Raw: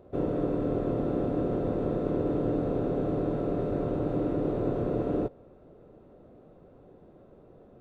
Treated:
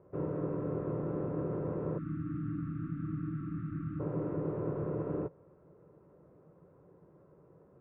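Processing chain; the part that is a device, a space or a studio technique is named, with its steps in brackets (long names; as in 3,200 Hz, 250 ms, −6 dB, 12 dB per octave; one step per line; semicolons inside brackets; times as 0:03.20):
time-frequency box erased 0:01.98–0:04.00, 340–1,100 Hz
bass cabinet (loudspeaker in its box 80–2,100 Hz, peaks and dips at 160 Hz +7 dB, 240 Hz −10 dB, 710 Hz −8 dB, 1,000 Hz +6 dB)
level −5.5 dB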